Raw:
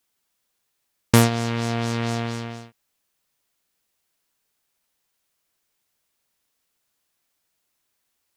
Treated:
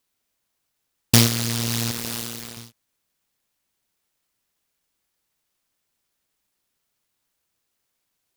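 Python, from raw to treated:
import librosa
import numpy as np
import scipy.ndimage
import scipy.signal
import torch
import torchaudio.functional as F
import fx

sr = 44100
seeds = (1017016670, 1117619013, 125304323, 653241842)

y = fx.highpass(x, sr, hz=430.0, slope=6, at=(1.91, 2.57))
y = fx.noise_mod_delay(y, sr, seeds[0], noise_hz=4300.0, depth_ms=0.47)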